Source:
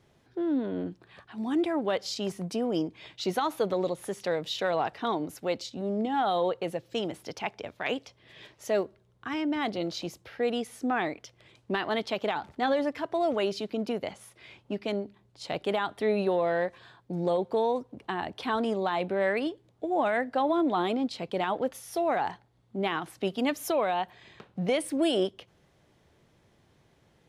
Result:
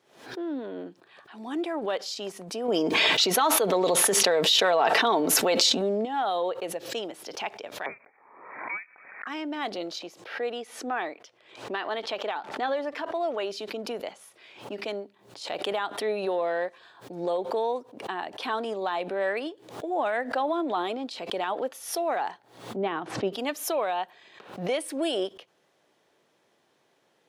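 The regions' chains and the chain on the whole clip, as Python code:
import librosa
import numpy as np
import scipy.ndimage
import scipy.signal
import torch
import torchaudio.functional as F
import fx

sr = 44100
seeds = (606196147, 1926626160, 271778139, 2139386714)

y = fx.chain(x, sr, fx.comb(ms=4.5, depth=0.33),
    fx.env_flatten(amount_pct=100), at=(2.68, 6.05))
y = fx.chain(y, sr, fx.highpass(hz=760.0, slope=24),
    fx.freq_invert(carrier_hz=2900),
    fx.pre_swell(db_per_s=54.0), at=(7.86, 9.27))
y = fx.chain(y, sr, fx.lowpass(hz=3800.0, slope=6),
    fx.low_shelf(hz=230.0, db=-6.5), at=(9.99, 13.5))
y = fx.chain(y, sr, fx.lowpass(hz=6900.0, slope=12),
    fx.tilt_eq(slope=-3.5), at=(22.76, 23.33))
y = scipy.signal.sosfilt(scipy.signal.butter(2, 360.0, 'highpass', fs=sr, output='sos'), y)
y = fx.notch(y, sr, hz=2100.0, q=21.0)
y = fx.pre_swell(y, sr, db_per_s=100.0)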